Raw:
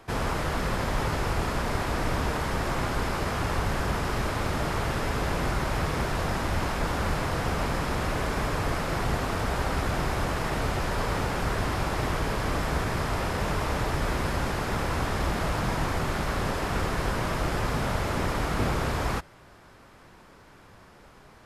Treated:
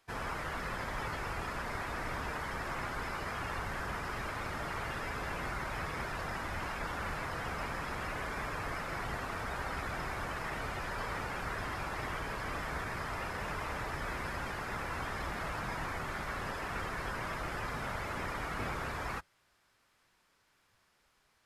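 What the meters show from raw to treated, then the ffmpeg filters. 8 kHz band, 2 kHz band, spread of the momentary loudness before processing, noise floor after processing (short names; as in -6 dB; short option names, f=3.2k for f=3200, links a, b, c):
-11.5 dB, -5.5 dB, 1 LU, -72 dBFS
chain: -af "afftdn=nr=13:nf=-35,tiltshelf=f=1.2k:g=-8,volume=-6dB"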